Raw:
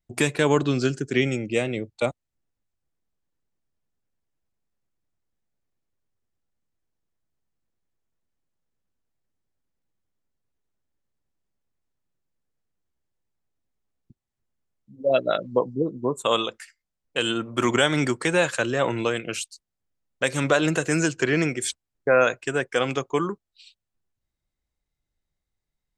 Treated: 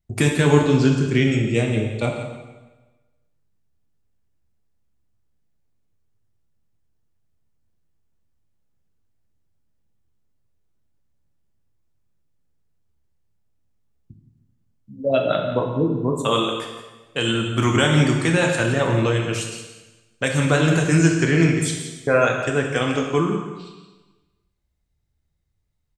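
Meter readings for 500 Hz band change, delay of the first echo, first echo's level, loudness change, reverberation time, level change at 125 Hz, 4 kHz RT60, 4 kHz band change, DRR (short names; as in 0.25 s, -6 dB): +2.0 dB, 0.171 s, -11.5 dB, +4.0 dB, 1.2 s, +10.5 dB, 1.1 s, +2.5 dB, 1.0 dB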